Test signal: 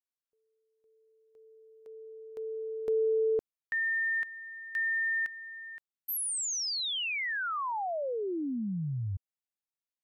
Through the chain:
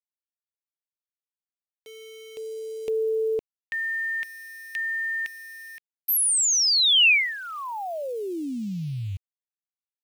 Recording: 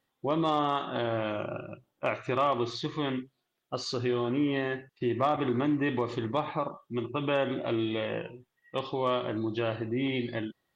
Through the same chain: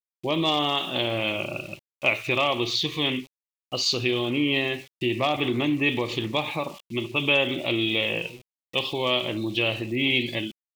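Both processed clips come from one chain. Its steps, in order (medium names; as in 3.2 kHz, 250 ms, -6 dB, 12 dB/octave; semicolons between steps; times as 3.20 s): small samples zeroed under -51.5 dBFS; resonant high shelf 2 kHz +8 dB, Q 3; trim +3 dB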